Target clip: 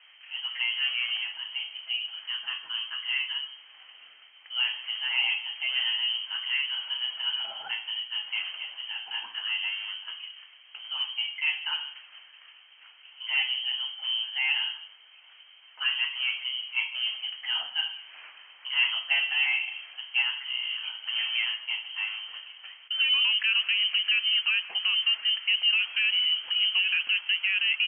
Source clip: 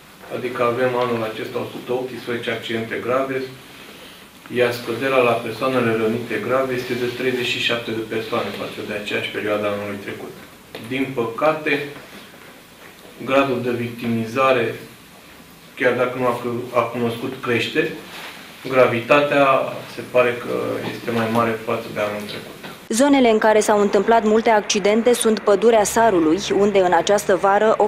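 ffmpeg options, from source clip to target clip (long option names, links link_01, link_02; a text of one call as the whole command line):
ffmpeg -i in.wav -filter_complex "[0:a]acontrast=38,lowpass=frequency=2800:width_type=q:width=0.5098,lowpass=frequency=2800:width_type=q:width=0.6013,lowpass=frequency=2800:width_type=q:width=0.9,lowpass=frequency=2800:width_type=q:width=2.563,afreqshift=-3300,aderivative,asplit=2[link_01][link_02];[link_02]aecho=0:1:152:0.0944[link_03];[link_01][link_03]amix=inputs=2:normalize=0,volume=-6.5dB" out.wav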